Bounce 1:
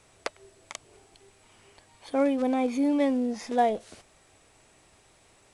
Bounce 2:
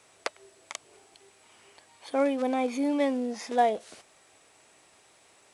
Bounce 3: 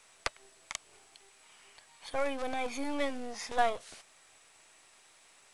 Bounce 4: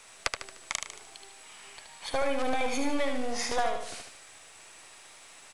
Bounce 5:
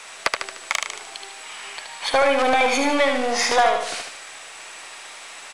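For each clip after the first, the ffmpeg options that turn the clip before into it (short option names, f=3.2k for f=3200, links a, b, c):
-af "highpass=f=390:p=1,volume=1.5dB"
-filter_complex "[0:a]lowshelf=f=440:g=-5.5,acrossover=split=900[a][b];[a]aeval=exprs='max(val(0),0)':c=same[c];[c][b]amix=inputs=2:normalize=0"
-filter_complex "[0:a]acompressor=threshold=-34dB:ratio=4,asplit=2[a][b];[b]aecho=0:1:75|150|225|300|375:0.531|0.234|0.103|0.0452|0.0199[c];[a][c]amix=inputs=2:normalize=0,volume=8dB"
-filter_complex "[0:a]asplit=2[a][b];[b]highpass=f=720:p=1,volume=17dB,asoftclip=type=tanh:threshold=-6.5dB[c];[a][c]amix=inputs=2:normalize=0,lowpass=f=4k:p=1,volume=-6dB,volume=4dB"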